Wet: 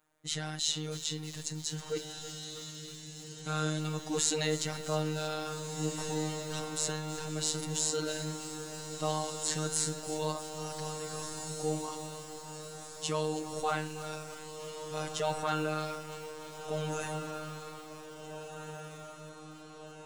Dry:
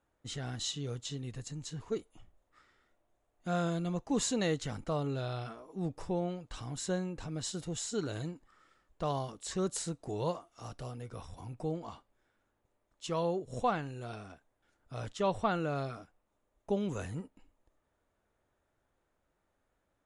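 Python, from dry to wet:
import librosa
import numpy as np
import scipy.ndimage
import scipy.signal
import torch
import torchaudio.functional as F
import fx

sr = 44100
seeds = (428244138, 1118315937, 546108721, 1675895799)

p1 = fx.tilt_eq(x, sr, slope=2.0)
p2 = fx.transient(p1, sr, attack_db=5, sustain_db=-3)
p3 = fx.over_compress(p2, sr, threshold_db=-34.0, ratio=-1.0)
p4 = p2 + (p3 * 10.0 ** (-3.0 / 20.0))
p5 = fx.robotise(p4, sr, hz=154.0)
p6 = fx.room_shoebox(p5, sr, seeds[0], volume_m3=1900.0, walls='furnished', distance_m=0.32)
p7 = fx.transient(p6, sr, attack_db=-5, sustain_db=4)
p8 = p7 + fx.echo_diffused(p7, sr, ms=1775, feedback_pct=55, wet_db=-8, dry=0)
y = fx.echo_crushed(p8, sr, ms=320, feedback_pct=80, bits=7, wet_db=-14)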